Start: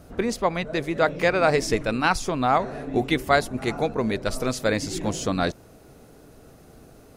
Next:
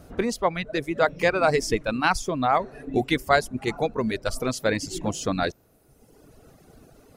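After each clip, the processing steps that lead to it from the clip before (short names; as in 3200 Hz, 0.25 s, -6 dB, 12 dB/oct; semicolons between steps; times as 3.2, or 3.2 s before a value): reverb removal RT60 1.2 s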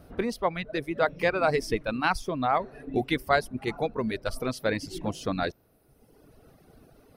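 bell 7100 Hz -13 dB 0.41 oct; gain -3.5 dB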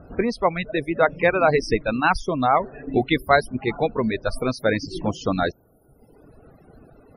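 loudest bins only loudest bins 64; gain +6.5 dB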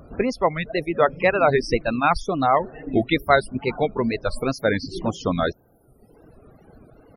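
wow and flutter 130 cents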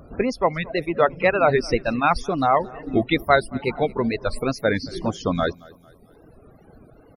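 feedback echo 0.224 s, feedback 45%, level -23.5 dB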